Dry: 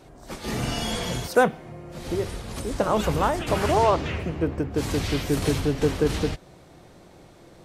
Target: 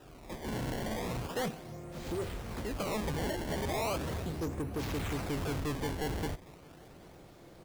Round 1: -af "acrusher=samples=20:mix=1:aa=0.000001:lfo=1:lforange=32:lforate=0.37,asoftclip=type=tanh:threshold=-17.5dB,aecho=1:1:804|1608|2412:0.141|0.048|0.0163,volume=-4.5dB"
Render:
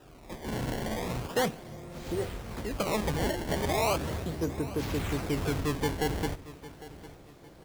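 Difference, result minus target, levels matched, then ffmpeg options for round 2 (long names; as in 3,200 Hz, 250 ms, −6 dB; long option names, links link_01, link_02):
echo-to-direct +9 dB; soft clipping: distortion −7 dB
-af "acrusher=samples=20:mix=1:aa=0.000001:lfo=1:lforange=32:lforate=0.37,asoftclip=type=tanh:threshold=-26.5dB,aecho=1:1:804|1608:0.0501|0.017,volume=-4.5dB"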